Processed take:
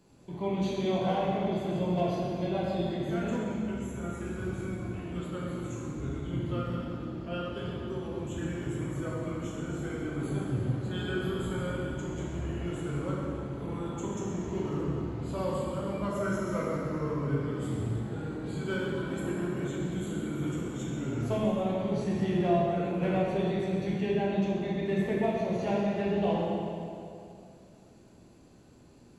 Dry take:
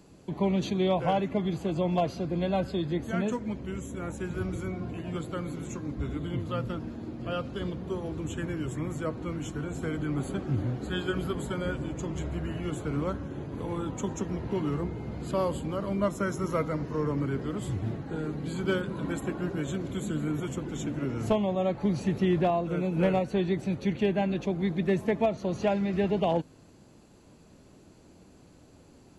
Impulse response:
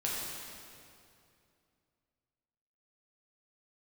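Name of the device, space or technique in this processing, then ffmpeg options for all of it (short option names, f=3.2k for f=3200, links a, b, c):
stairwell: -filter_complex "[1:a]atrim=start_sample=2205[a];[0:a][a]afir=irnorm=-1:irlink=0,volume=-7.5dB"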